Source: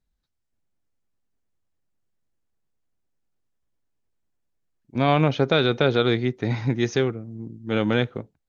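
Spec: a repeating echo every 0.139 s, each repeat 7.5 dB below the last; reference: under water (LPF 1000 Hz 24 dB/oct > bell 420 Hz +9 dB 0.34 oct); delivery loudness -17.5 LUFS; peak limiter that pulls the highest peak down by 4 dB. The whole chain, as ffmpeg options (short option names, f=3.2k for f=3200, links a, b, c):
-af "alimiter=limit=-10dB:level=0:latency=1,lowpass=f=1k:w=0.5412,lowpass=f=1k:w=1.3066,equalizer=f=420:t=o:w=0.34:g=9,aecho=1:1:139|278|417|556|695:0.422|0.177|0.0744|0.0312|0.0131,volume=3dB"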